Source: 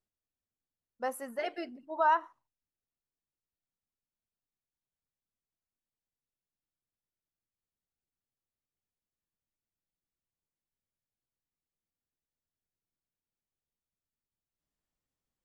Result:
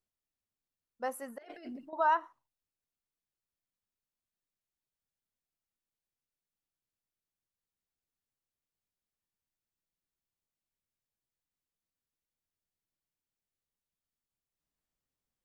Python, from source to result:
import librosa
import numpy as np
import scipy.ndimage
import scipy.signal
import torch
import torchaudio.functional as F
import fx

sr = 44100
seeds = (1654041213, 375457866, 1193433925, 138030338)

y = fx.over_compress(x, sr, threshold_db=-47.0, ratio=-1.0, at=(1.38, 1.93))
y = F.gain(torch.from_numpy(y), -1.5).numpy()